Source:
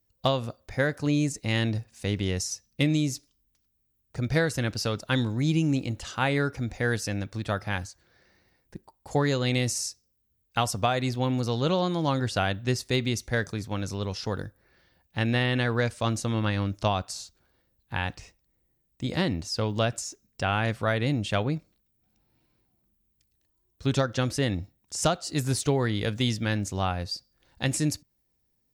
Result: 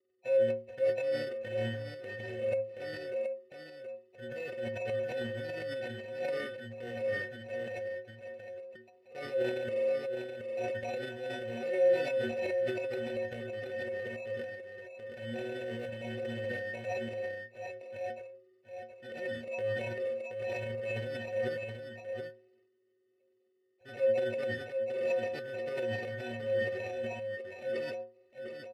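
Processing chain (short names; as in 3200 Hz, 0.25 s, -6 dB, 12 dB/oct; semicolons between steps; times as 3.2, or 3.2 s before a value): nonlinear frequency compression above 2100 Hz 4:1; low shelf 150 Hz +8 dB; in parallel at +1.5 dB: limiter -15.5 dBFS, peak gain reduction 7 dB; on the sum: sample-and-hold 27×; vowel filter e; metallic resonator 110 Hz, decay 0.49 s, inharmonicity 0.03; on a send: echo 0.724 s -6.5 dB; on the sum: transient shaper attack -5 dB, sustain +8 dB; gain +6 dB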